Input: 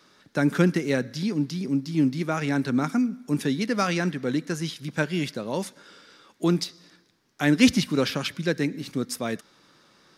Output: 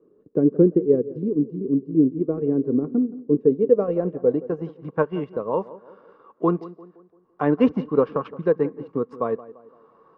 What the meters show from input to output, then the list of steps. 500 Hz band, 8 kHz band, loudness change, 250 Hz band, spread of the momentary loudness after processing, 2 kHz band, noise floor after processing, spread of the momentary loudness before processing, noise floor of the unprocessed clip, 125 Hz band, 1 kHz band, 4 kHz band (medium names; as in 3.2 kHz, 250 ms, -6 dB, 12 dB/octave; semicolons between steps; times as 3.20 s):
+9.0 dB, under -35 dB, +3.0 dB, +2.0 dB, 10 LU, -12.0 dB, -58 dBFS, 9 LU, -62 dBFS, -2.0 dB, +1.5 dB, under -20 dB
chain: transient shaper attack +3 dB, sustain -8 dB; small resonant body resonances 460/1100/2800 Hz, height 13 dB, ringing for 35 ms; on a send: tape echo 172 ms, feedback 49%, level -16 dB, low-pass 1.4 kHz; on the sum: low-pass sweep 380 Hz -> 970 Hz, 3.25–4.98 s; trim -4 dB